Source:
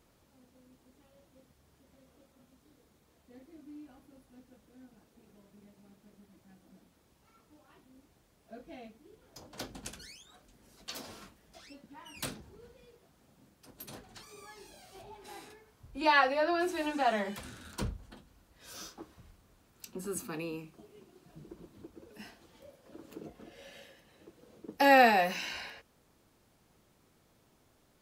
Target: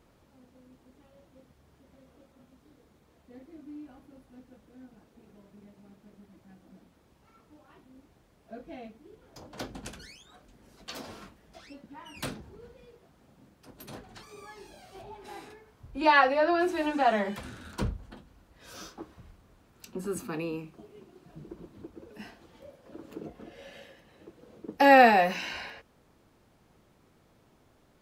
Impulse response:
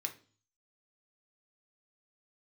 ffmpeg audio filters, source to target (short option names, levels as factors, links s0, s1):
-af "highshelf=f=3900:g=-9,volume=1.78"